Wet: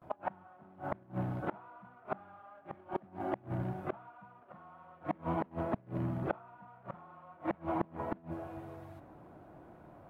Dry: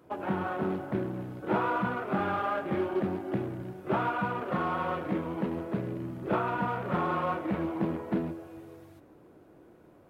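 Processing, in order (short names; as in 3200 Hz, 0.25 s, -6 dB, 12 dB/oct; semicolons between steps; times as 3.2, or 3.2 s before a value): gate with hold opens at -51 dBFS; EQ curve 160 Hz 0 dB, 460 Hz -9 dB, 680 Hz +4 dB, 5400 Hz -11 dB; flipped gate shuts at -25 dBFS, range -29 dB; gain +4.5 dB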